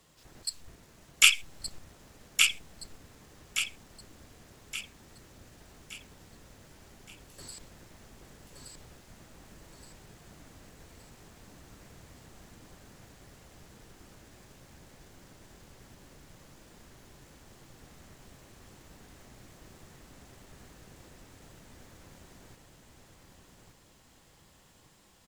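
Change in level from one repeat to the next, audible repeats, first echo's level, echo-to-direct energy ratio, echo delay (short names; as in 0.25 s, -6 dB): -7.5 dB, 5, -4.0 dB, -3.0 dB, 1.171 s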